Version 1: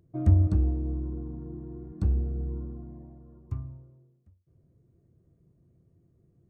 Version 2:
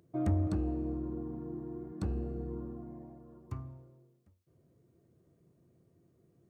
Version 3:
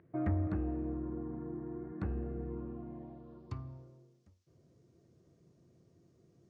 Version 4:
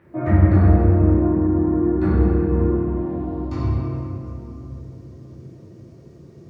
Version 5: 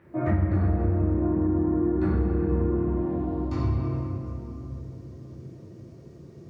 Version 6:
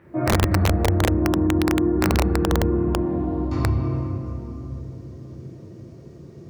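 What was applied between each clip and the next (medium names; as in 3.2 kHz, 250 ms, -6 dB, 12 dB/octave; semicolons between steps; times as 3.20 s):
high-pass 400 Hz 6 dB/octave; in parallel at -2 dB: peak limiter -32.5 dBFS, peak gain reduction 11.5 dB
in parallel at -1 dB: compression, threshold -44 dBFS, peak gain reduction 18 dB; on the sum: low-pass sweep 1.9 kHz -> 5.9 kHz, 2.28–3.91 s; trim -4 dB
reverberation RT60 3.2 s, pre-delay 3 ms, DRR -15.5 dB; trim +4.5 dB
compression 6:1, threshold -18 dBFS, peak gain reduction 10 dB; trim -2 dB
integer overflow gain 15.5 dB; trim +4 dB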